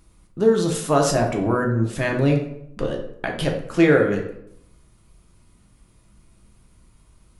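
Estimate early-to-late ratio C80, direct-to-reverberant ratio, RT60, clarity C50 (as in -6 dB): 10.0 dB, 1.0 dB, 0.75 s, 6.5 dB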